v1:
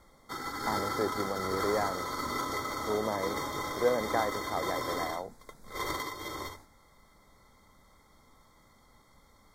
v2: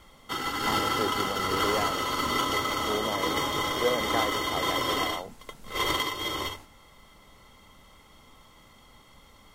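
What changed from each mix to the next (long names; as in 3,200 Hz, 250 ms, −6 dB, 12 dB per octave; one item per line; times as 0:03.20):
background +6.0 dB
master: remove Butterworth band-reject 2,800 Hz, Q 1.9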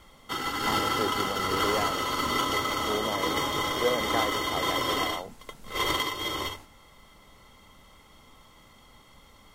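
nothing changed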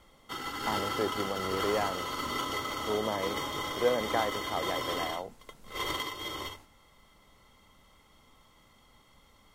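background −6.5 dB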